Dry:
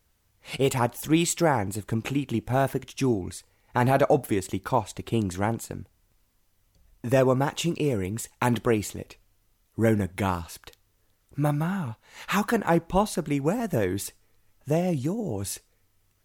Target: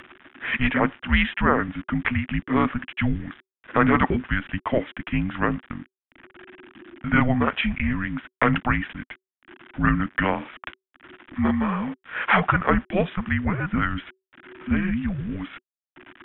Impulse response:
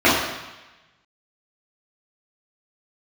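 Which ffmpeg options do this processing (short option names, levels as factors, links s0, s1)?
-af "acompressor=mode=upward:threshold=0.0251:ratio=2.5,equalizer=f=90:t=o:w=2.2:g=-8.5,aresample=8000,aeval=exprs='val(0)*gte(abs(val(0)),0.00355)':c=same,aresample=44100,equalizer=f=125:t=o:w=1:g=9,equalizer=f=500:t=o:w=1:g=-8,equalizer=f=2000:t=o:w=1:g=12,afreqshift=-380,volume=1.41"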